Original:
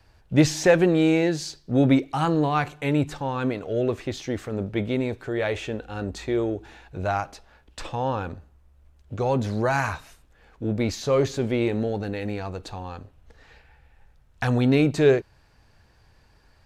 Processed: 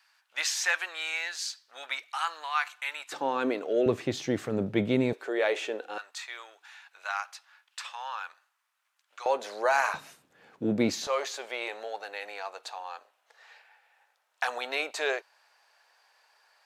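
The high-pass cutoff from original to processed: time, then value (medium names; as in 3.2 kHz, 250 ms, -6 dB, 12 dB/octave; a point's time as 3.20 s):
high-pass 24 dB/octave
1.1 kHz
from 3.12 s 280 Hz
from 3.86 s 120 Hz
from 5.13 s 370 Hz
from 5.98 s 1.1 kHz
from 9.26 s 510 Hz
from 9.94 s 150 Hz
from 11.07 s 660 Hz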